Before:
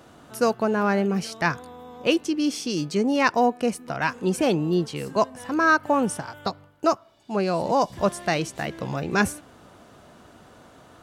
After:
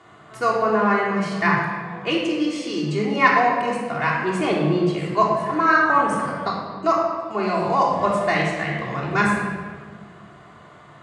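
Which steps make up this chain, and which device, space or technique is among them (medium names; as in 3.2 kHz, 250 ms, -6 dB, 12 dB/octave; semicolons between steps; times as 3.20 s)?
car door speaker (cabinet simulation 97–8200 Hz, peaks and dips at 260 Hz -9 dB, 1.1 kHz +8 dB, 2 kHz +9 dB, 5.6 kHz -9 dB); simulated room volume 2000 m³, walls mixed, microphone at 3.3 m; trim -4 dB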